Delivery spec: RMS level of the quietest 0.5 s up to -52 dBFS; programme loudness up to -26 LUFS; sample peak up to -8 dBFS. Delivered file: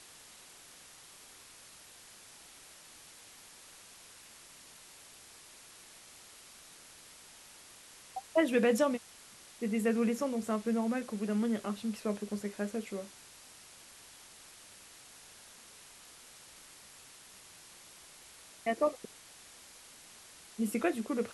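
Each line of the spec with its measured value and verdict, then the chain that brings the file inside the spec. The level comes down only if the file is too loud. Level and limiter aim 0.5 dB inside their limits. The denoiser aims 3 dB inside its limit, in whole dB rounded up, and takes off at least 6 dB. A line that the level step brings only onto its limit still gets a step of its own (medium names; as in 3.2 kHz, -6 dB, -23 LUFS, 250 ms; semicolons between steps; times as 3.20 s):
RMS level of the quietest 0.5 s -55 dBFS: pass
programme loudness -33.5 LUFS: pass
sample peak -16.5 dBFS: pass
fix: none needed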